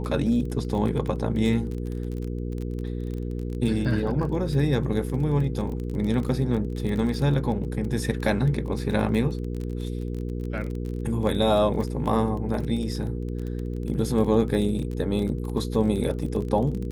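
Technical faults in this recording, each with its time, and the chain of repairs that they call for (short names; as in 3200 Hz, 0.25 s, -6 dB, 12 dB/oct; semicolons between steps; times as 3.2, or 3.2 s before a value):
crackle 21/s -30 dBFS
hum 60 Hz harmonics 8 -30 dBFS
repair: de-click; de-hum 60 Hz, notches 8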